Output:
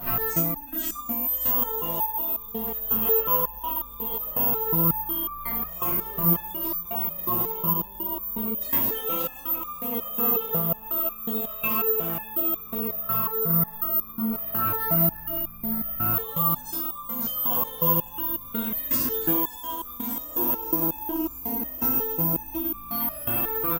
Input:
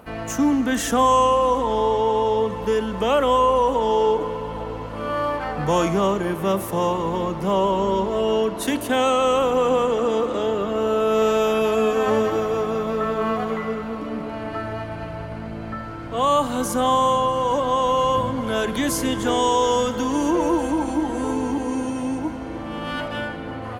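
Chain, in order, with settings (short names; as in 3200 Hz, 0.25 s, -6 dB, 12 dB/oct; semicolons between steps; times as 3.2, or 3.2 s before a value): 13.29–13.73 fixed phaser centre 510 Hz, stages 8; on a send: feedback echo 0.561 s, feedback 37%, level -6 dB; on the sum: shoebox room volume 700 m³, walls furnished, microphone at 8.8 m; careless resampling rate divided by 3×, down none, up zero stuff; maximiser +11.5 dB; stepped resonator 5.5 Hz 120–1200 Hz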